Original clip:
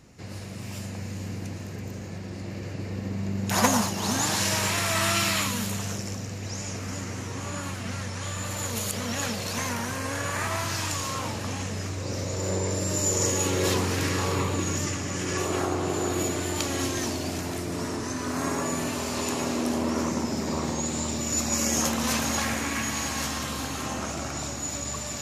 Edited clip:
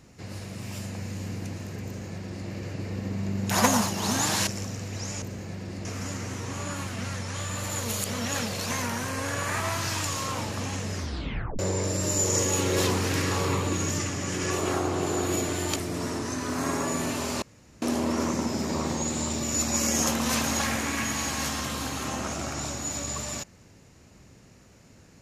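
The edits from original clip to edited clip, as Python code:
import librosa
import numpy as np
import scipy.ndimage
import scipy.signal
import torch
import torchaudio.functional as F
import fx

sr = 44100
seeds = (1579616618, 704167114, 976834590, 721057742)

y = fx.edit(x, sr, fx.duplicate(start_s=1.85, length_s=0.63, to_s=6.72),
    fx.cut(start_s=4.47, length_s=1.5),
    fx.tape_stop(start_s=11.82, length_s=0.64),
    fx.cut(start_s=16.63, length_s=0.91),
    fx.room_tone_fill(start_s=19.2, length_s=0.4), tone=tone)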